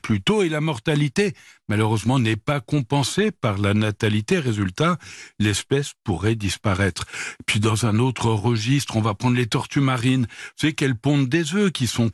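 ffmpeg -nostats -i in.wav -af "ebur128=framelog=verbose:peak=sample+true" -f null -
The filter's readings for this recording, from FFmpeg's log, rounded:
Integrated loudness:
  I:         -21.7 LUFS
  Threshold: -31.8 LUFS
Loudness range:
  LRA:         1.6 LU
  Threshold: -41.9 LUFS
  LRA low:   -22.9 LUFS
  LRA high:  -21.3 LUFS
Sample peak:
  Peak:       -7.0 dBFS
True peak:
  Peak:       -7.0 dBFS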